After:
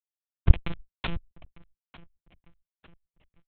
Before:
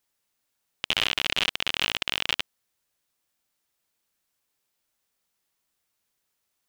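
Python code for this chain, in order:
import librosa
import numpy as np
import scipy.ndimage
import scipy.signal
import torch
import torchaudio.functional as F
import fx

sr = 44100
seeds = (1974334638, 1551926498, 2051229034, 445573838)

p1 = fx.lower_of_two(x, sr, delay_ms=0.9)
p2 = fx.highpass(p1, sr, hz=90.0, slope=6)
p3 = fx.transient(p2, sr, attack_db=8, sustain_db=-9)
p4 = fx.over_compress(p3, sr, threshold_db=-27.0, ratio=-0.5)
p5 = p3 + (p4 * librosa.db_to_amplitude(2.0))
p6 = fx.stretch_grains(p5, sr, factor=0.52, grain_ms=75.0)
p7 = fx.chopper(p6, sr, hz=1.9, depth_pct=60, duty_pct=75)
p8 = fx.schmitt(p7, sr, flips_db=-13.0)
p9 = fx.echo_wet_lowpass(p8, sr, ms=895, feedback_pct=52, hz=2900.0, wet_db=-20)
p10 = fx.lpc_monotone(p9, sr, seeds[0], pitch_hz=170.0, order=8)
p11 = fx.pre_swell(p10, sr, db_per_s=43.0)
y = p11 * librosa.db_to_amplitude(3.5)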